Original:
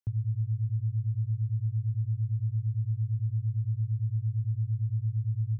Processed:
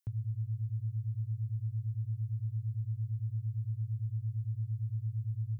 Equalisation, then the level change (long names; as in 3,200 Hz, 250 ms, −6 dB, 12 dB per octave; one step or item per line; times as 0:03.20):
spectral tilt +2.5 dB per octave
low-shelf EQ 75 Hz +6.5 dB
0.0 dB